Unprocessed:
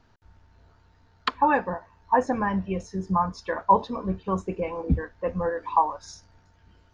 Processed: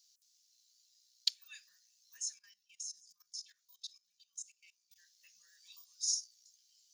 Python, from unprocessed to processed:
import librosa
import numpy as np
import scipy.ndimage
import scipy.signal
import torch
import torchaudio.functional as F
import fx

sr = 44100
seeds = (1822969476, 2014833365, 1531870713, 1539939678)

y = scipy.signal.sosfilt(scipy.signal.cheby2(4, 80, 960.0, 'highpass', fs=sr, output='sos'), x)
y = fx.level_steps(y, sr, step_db=19, at=(2.34, 4.96))
y = F.gain(torch.from_numpy(y), 14.0).numpy()